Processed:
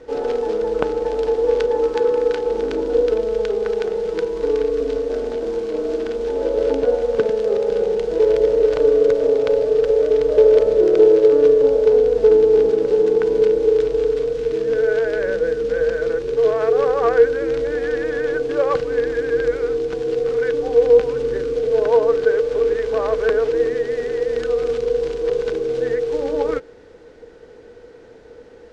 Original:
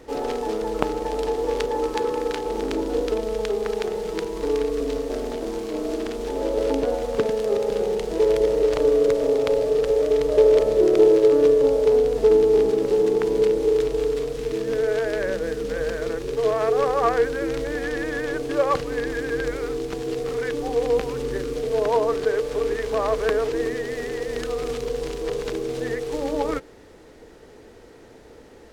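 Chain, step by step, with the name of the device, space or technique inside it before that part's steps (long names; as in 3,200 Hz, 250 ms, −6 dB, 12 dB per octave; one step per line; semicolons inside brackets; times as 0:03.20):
inside a cardboard box (low-pass filter 5,900 Hz 12 dB per octave; hollow resonant body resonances 480/1,500 Hz, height 11 dB, ringing for 55 ms)
level −1 dB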